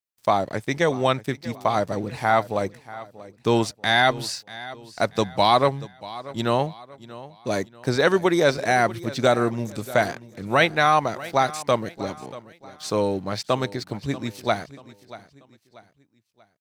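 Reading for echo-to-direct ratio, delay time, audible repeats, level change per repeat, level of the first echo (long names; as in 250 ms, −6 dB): −17.0 dB, 636 ms, 3, −8.5 dB, −17.5 dB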